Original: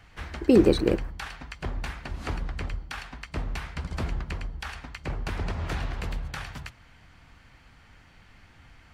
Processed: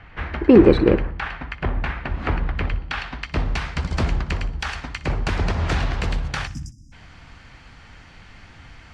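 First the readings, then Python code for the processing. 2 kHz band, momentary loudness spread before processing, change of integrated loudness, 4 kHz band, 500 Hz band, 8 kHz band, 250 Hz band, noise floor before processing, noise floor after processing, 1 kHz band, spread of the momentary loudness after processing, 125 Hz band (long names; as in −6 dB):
+9.0 dB, 17 LU, +7.5 dB, +6.5 dB, +7.0 dB, +5.0 dB, +7.0 dB, −55 dBFS, −46 dBFS, +9.0 dB, 15 LU, +8.5 dB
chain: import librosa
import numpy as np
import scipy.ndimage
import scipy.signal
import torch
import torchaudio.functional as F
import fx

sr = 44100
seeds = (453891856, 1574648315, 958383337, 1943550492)

p1 = fx.tracing_dist(x, sr, depth_ms=0.031)
p2 = np.clip(p1, -10.0 ** (-22.5 / 20.0), 10.0 ** (-22.5 / 20.0))
p3 = p1 + (p2 * librosa.db_to_amplitude(-5.0))
p4 = fx.spec_erase(p3, sr, start_s=6.47, length_s=0.46, low_hz=340.0, high_hz=4900.0)
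p5 = fx.filter_sweep_lowpass(p4, sr, from_hz=2300.0, to_hz=6800.0, start_s=2.35, end_s=3.78, q=0.98)
p6 = p5 + fx.echo_feedback(p5, sr, ms=61, feedback_pct=46, wet_db=-18.0, dry=0)
y = p6 * librosa.db_to_amplitude(5.0)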